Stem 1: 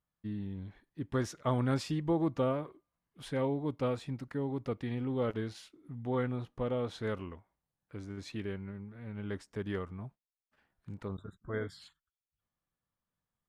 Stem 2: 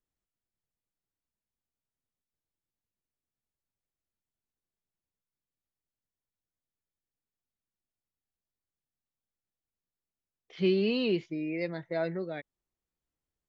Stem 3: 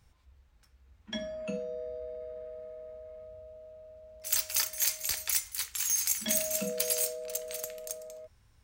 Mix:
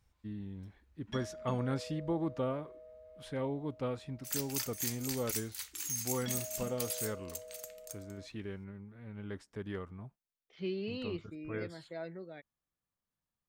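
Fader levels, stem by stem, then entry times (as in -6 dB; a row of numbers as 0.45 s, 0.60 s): -4.0 dB, -11.0 dB, -8.5 dB; 0.00 s, 0.00 s, 0.00 s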